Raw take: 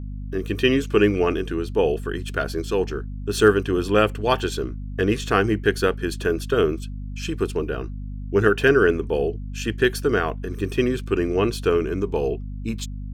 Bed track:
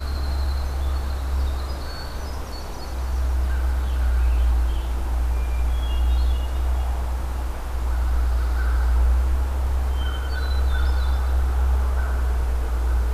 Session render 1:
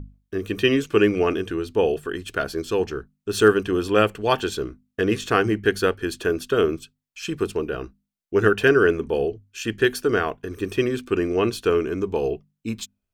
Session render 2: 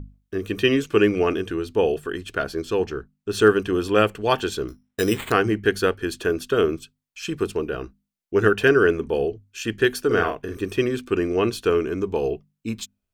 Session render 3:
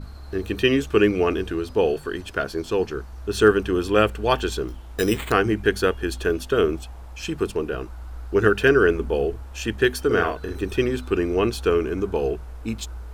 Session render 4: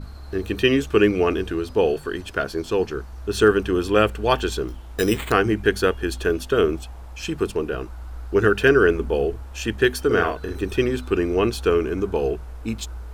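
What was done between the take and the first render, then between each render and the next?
hum notches 50/100/150/200/250 Hz
2.21–3.54 s: treble shelf 5.9 kHz -5 dB; 4.68–5.32 s: careless resampling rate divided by 8×, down none, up hold; 10.06–10.57 s: doubling 47 ms -5 dB
add bed track -14.5 dB
trim +1 dB; peak limiter -3 dBFS, peak gain reduction 2 dB

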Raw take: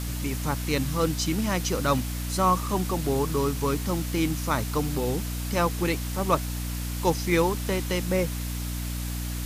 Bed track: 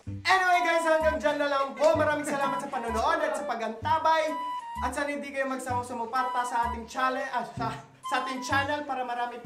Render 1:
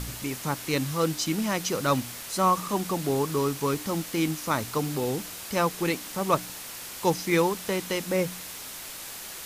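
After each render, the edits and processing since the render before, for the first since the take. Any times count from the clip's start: de-hum 60 Hz, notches 5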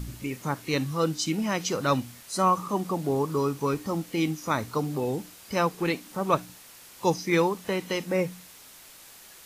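noise print and reduce 10 dB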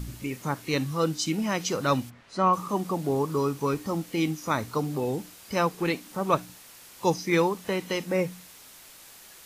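2.09–2.52 s: low-pass 1.7 kHz -> 4.4 kHz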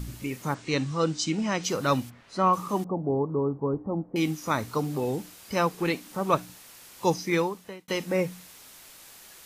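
0.54–1.64 s: steep low-pass 8.4 kHz 48 dB/octave; 2.84–4.16 s: inverse Chebyshev low-pass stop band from 3.9 kHz, stop band 70 dB; 7.22–7.88 s: fade out linear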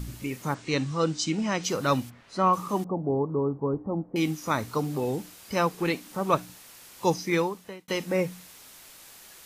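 no audible change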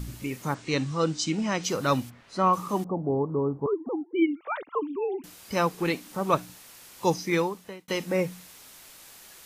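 3.66–5.24 s: formants replaced by sine waves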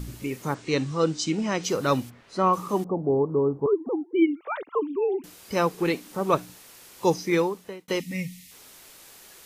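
8.00–8.52 s: time-frequency box 300–1800 Hz -21 dB; peaking EQ 410 Hz +5 dB 0.72 oct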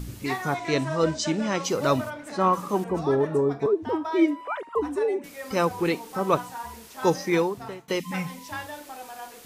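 add bed track -9 dB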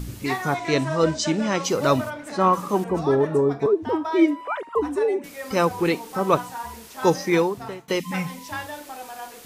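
trim +3 dB

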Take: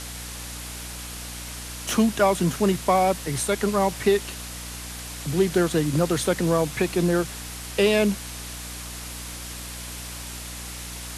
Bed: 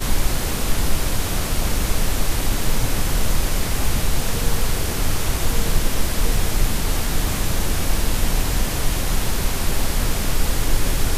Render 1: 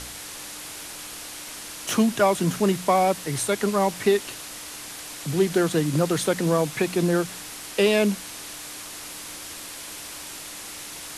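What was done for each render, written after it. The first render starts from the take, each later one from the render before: de-hum 60 Hz, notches 4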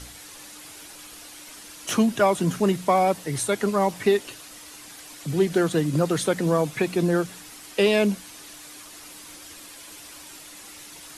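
noise reduction 8 dB, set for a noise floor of -38 dBFS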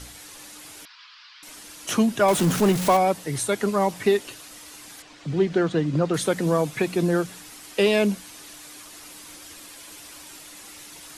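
0.85–1.43 s: Chebyshev band-pass 1–5 kHz, order 4; 2.28–2.97 s: jump at every zero crossing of -23 dBFS; 5.02–6.14 s: distance through air 130 m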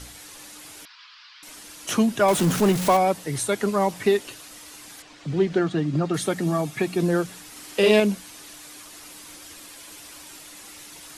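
5.59–7.00 s: comb of notches 500 Hz; 7.51–8.00 s: doubling 47 ms -3 dB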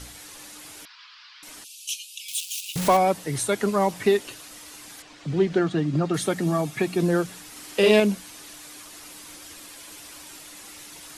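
1.64–2.76 s: steep high-pass 2.5 kHz 96 dB/octave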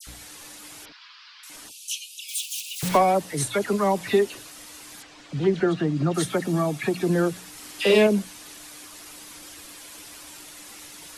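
phase dispersion lows, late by 72 ms, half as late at 2 kHz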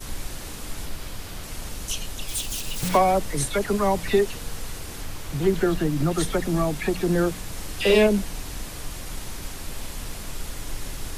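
add bed -14 dB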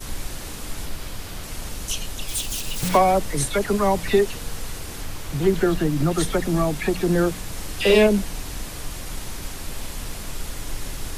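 trim +2 dB

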